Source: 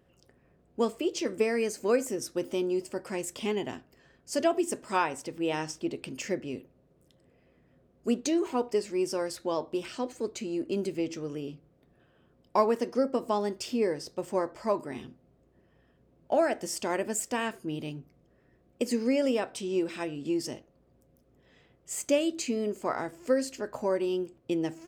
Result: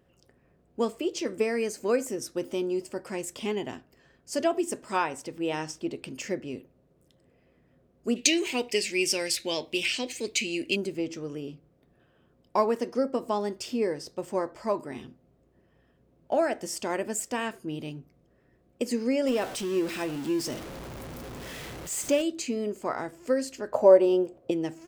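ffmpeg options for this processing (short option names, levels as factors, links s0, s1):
-filter_complex "[0:a]asplit=3[s0][s1][s2];[s0]afade=t=out:st=8.15:d=0.02[s3];[s1]highshelf=f=1700:t=q:w=3:g=11.5,afade=t=in:st=8.15:d=0.02,afade=t=out:st=10.75:d=0.02[s4];[s2]afade=t=in:st=10.75:d=0.02[s5];[s3][s4][s5]amix=inputs=3:normalize=0,asettb=1/sr,asplit=3[s6][s7][s8];[s6]atrim=end=19.274[s9];[s7]atrim=start=19.27:end=22.22,asetpts=PTS-STARTPTS,afade=t=in:d=0.004:c=qsin,afade=t=out:st=2.946:d=0.004:c=qsin,aeval=exprs='val(0)+0.5*0.0188*sgn(val(0))':c=same[s10];[s8]atrim=start=22.216[s11];[s9][s10]acrossfade=d=0.004:c1=hsin:c2=qsin[s12];[s12][s11]acrossfade=d=0.004:c1=qsin:c2=hsin,asettb=1/sr,asplit=3[s13][s14][s15];[s13]atrim=end=23.724[s16];[s14]atrim=start=23.72:end=24.51,asetpts=PTS-STARTPTS,afade=t=in:d=0.004:c=qsin,afade=t=out:st=0.786:d=0.004:c=qsin,equalizer=f=600:w=1.1:g=14.5[s17];[s15]atrim=start=24.506[s18];[s16][s17]acrossfade=d=0.004:c1=hsin:c2=qsin[s19];[s19][s18]acrossfade=d=0.004:c1=qsin:c2=hsin"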